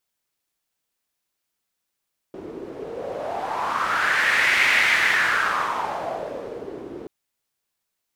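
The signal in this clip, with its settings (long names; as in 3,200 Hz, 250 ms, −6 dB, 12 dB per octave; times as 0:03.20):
wind from filtered noise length 4.73 s, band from 360 Hz, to 2,100 Hz, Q 4.2, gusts 1, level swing 17 dB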